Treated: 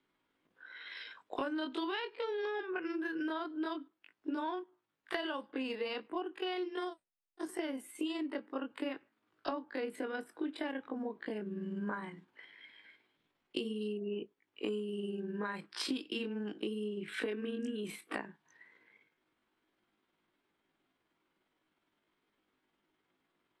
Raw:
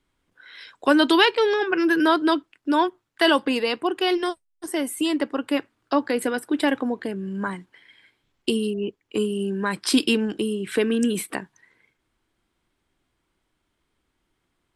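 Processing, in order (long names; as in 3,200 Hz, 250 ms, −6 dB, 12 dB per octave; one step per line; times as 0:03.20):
three-way crossover with the lows and the highs turned down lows −20 dB, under 160 Hz, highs −13 dB, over 4,300 Hz
in parallel at −3 dB: brickwall limiter −13.5 dBFS, peak gain reduction 9 dB
on the sum: downward compressor 6 to 1, threshold −28 dBFS, peak gain reduction 17 dB
time stretch by overlap-add 1.6×, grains 102 ms
level −6.5 dB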